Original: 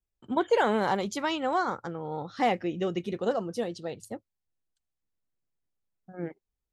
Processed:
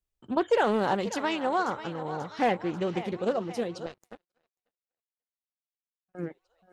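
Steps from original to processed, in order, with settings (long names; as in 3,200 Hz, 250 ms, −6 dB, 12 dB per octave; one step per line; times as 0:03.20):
feedback echo with a high-pass in the loop 538 ms, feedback 56%, high-pass 370 Hz, level −12.5 dB
0:03.86–0:06.15: power curve on the samples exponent 3
highs frequency-modulated by the lows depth 0.2 ms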